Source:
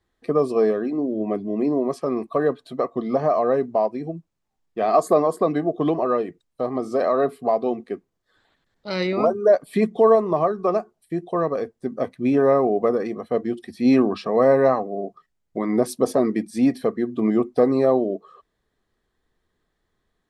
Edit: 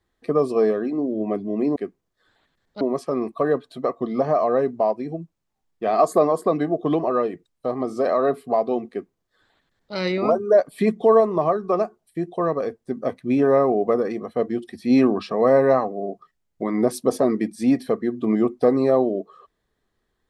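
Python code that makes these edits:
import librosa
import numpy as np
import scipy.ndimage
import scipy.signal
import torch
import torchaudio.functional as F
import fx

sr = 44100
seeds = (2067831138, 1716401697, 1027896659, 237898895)

y = fx.edit(x, sr, fx.duplicate(start_s=7.85, length_s=1.05, to_s=1.76), tone=tone)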